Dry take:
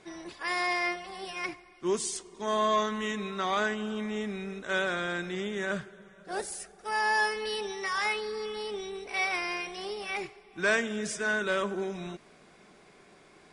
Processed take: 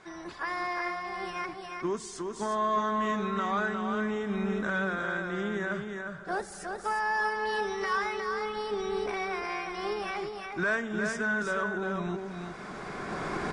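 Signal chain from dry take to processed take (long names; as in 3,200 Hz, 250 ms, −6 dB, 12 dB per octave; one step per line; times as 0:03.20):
camcorder AGC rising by 16 dB per second
low-pass filter 7,400 Hz 12 dB per octave
parametric band 490 Hz −4.5 dB 1.8 octaves
in parallel at −8 dB: soft clipping −24 dBFS, distortion −17 dB
on the sum: high shelf with overshoot 1,900 Hz −8 dB, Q 1.5
on a send: single-tap delay 358 ms −5 dB
on the sum: one half of a high-frequency compander encoder only
level −3 dB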